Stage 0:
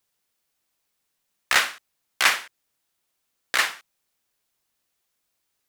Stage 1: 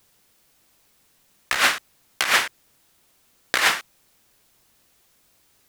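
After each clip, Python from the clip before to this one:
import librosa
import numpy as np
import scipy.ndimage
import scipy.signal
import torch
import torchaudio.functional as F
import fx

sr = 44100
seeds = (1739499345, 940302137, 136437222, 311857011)

y = fx.low_shelf(x, sr, hz=430.0, db=6.5)
y = fx.over_compress(y, sr, threshold_db=-28.0, ratio=-1.0)
y = y * 10.0 ** (8.0 / 20.0)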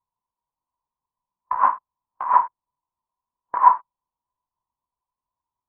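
y = fx.lowpass_res(x, sr, hz=990.0, q=11.0)
y = fx.low_shelf(y, sr, hz=160.0, db=8.0)
y = fx.spectral_expand(y, sr, expansion=1.5)
y = y * 10.0 ** (-1.0 / 20.0)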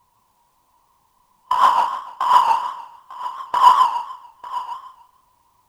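y = fx.power_curve(x, sr, exponent=0.7)
y = y + 10.0 ** (-16.0 / 20.0) * np.pad(y, (int(898 * sr / 1000.0), 0))[:len(y)]
y = fx.echo_warbled(y, sr, ms=146, feedback_pct=32, rate_hz=2.8, cents=135, wet_db=-4.5)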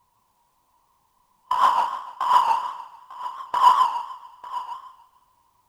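y = fx.echo_thinned(x, sr, ms=222, feedback_pct=49, hz=420.0, wet_db=-23.0)
y = y * 10.0 ** (-4.0 / 20.0)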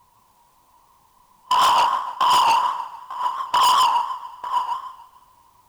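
y = np.clip(10.0 ** (23.0 / 20.0) * x, -1.0, 1.0) / 10.0 ** (23.0 / 20.0)
y = y * 10.0 ** (8.5 / 20.0)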